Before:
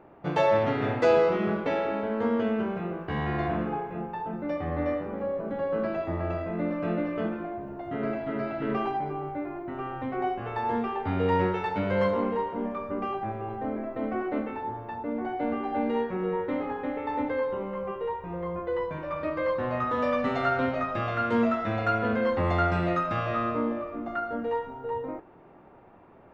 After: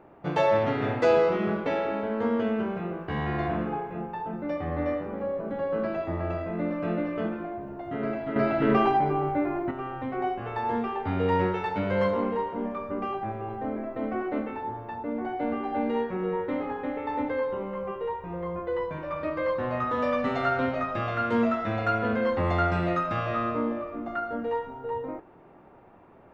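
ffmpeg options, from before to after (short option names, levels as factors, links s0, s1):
-filter_complex "[0:a]asplit=3[s0][s1][s2];[s0]atrim=end=8.362[s3];[s1]atrim=start=8.358:end=9.712,asetpts=PTS-STARTPTS,volume=2.24[s4];[s2]atrim=start=9.708[s5];[s3][s4]acrossfade=d=0.004:c1=hsin:c2=hsin[s6];[s6][s5]acrossfade=d=0.004:c1=hsin:c2=hsin"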